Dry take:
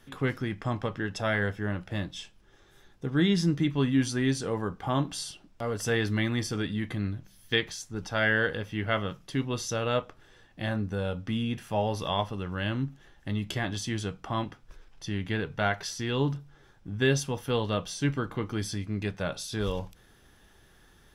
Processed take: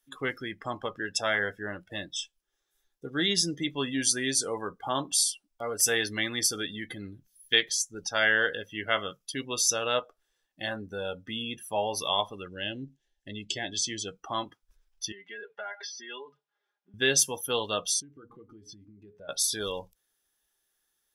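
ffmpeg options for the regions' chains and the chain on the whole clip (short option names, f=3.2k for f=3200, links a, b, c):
-filter_complex "[0:a]asettb=1/sr,asplit=3[a][b][c];[a]atrim=end=12.484[d];[b]atrim=start=12.48:end=14.08,asetpts=PTS-STARTPTS,afade=t=in:d=0.004:c=qsin,afade=t=out:st=1.596:d=0.004:c=qsin,lowpass=7.1k,equalizer=f=1.2k:w=2.4:g=-14.5[e];[c]atrim=start=14.076[f];[d][e]acrossfade=d=0.004:c1=hsin:c2=qsin[g];[g][f]acrossfade=d=0.004:c1=qsin:c2=hsin,asettb=1/sr,asplit=3[h][i][j];[h]atrim=end=15.124[k];[i]atrim=start=15.12:end=16.94,asetpts=PTS-STARTPTS,afade=t=in:d=0.004:c=qsin,afade=t=out:st=1.816:d=0.004:c=qsin,aecho=1:1:4.9:0.76,atrim=end_sample=80262,acompressor=threshold=-32dB:ratio=12:attack=3.2:release=140:knee=1:detection=peak,highpass=420,lowpass=3k[l];[j]atrim=start=16.936[m];[k][l]acrossfade=d=0.004:c1=hsin:c2=qsin[n];[n][m]acrossfade=d=0.004:c1=qsin:c2=hsin,asettb=1/sr,asplit=3[o][p][q];[o]atrim=end=18.004[r];[p]atrim=start=18:end=19.29,asetpts=PTS-STARTPTS,afade=t=in:d=0.004:c=qsin,afade=t=out:st=1.286:d=0.004:c=qsin,lowpass=f=1.2k:p=1,bandreject=f=60:t=h:w=6,bandreject=f=120:t=h:w=6,bandreject=f=180:t=h:w=6,bandreject=f=240:t=h:w=6,bandreject=f=300:t=h:w=6,bandreject=f=360:t=h:w=6,bandreject=f=420:t=h:w=6,bandreject=f=480:t=h:w=6,bandreject=f=540:t=h:w=6,acompressor=threshold=-38dB:ratio=12:attack=3.2:release=140:knee=1:detection=peak[s];[q]atrim=start=19.286[t];[r][s]acrossfade=d=0.004:c1=hsin:c2=qsin[u];[u][t]acrossfade=d=0.004:c1=qsin:c2=hsin,aemphasis=mode=production:type=75kf,afftdn=nr=24:nf=-37,bass=f=250:g=-15,treble=f=4k:g=3"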